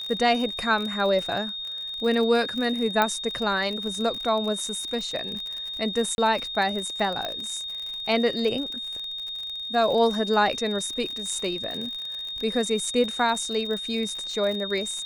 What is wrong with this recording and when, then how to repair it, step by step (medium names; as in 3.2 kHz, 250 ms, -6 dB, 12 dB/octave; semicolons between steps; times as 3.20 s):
crackle 52 per s -30 dBFS
whine 3.7 kHz -31 dBFS
3.02 s: pop -8 dBFS
6.15–6.18 s: dropout 31 ms
7.25 s: pop -16 dBFS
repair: de-click; band-stop 3.7 kHz, Q 30; interpolate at 6.15 s, 31 ms